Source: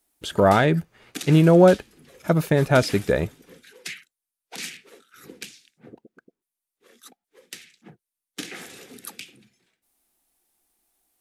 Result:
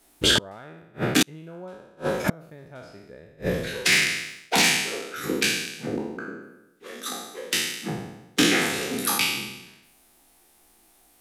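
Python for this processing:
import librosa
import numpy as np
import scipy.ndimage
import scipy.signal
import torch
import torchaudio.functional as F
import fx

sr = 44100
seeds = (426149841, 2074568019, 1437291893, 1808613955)

y = fx.spec_trails(x, sr, decay_s=0.94)
y = fx.high_shelf(y, sr, hz=5300.0, db=-6.0)
y = fx.gate_flip(y, sr, shuts_db=-17.0, range_db=-41)
y = fx.fold_sine(y, sr, drive_db=5, ceiling_db=-16.0)
y = fx.leveller(y, sr, passes=1, at=(3.92, 4.62))
y = y * 10.0 ** (5.0 / 20.0)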